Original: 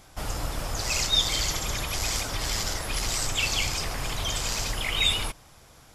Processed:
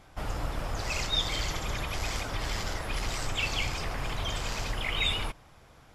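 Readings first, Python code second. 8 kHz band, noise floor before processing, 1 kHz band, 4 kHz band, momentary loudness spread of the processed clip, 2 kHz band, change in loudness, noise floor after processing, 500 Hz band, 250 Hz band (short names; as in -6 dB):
-11.5 dB, -53 dBFS, -1.5 dB, -6.0 dB, 7 LU, -2.5 dB, -5.0 dB, -56 dBFS, -1.5 dB, -1.5 dB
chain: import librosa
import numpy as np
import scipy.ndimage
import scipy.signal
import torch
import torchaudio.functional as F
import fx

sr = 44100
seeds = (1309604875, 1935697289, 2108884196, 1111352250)

y = fx.bass_treble(x, sr, bass_db=0, treble_db=-11)
y = F.gain(torch.from_numpy(y), -1.5).numpy()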